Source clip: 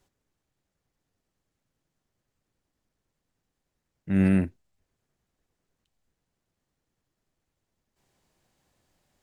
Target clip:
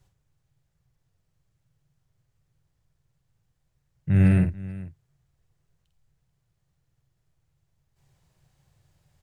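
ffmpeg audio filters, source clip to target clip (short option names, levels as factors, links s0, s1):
-af "lowshelf=f=180:t=q:w=3:g=8.5,aecho=1:1:49|437:0.473|0.119"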